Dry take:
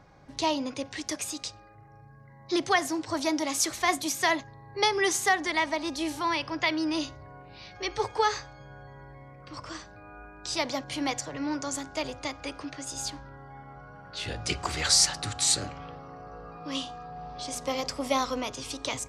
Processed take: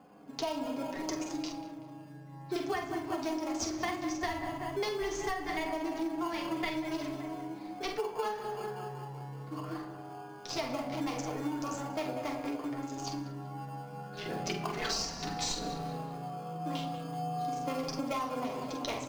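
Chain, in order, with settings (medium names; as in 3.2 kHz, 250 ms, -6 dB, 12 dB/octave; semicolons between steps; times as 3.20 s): local Wiener filter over 15 samples; elliptic band-pass 140–6000 Hz; doubling 45 ms -5.5 dB; filtered feedback delay 190 ms, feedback 67%, low-pass 2.1 kHz, level -10.5 dB; in parallel at -7.5 dB: sample-and-hold 23×; on the sum: flange 0.13 Hz, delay 3.9 ms, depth 5.2 ms, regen -27%; on a send at -3.5 dB: reverberation RT60 0.50 s, pre-delay 3 ms; on the sum: compression 16:1, threshold -32 dBFS, peak gain reduction 15 dB; trim +1.5 dB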